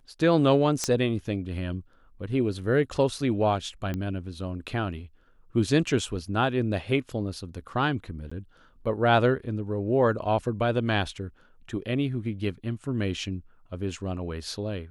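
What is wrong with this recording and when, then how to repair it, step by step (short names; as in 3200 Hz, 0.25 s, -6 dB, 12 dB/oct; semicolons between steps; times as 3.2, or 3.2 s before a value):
0.84 pop -11 dBFS
3.94 pop -19 dBFS
8.3–8.31 gap 15 ms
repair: de-click; interpolate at 8.3, 15 ms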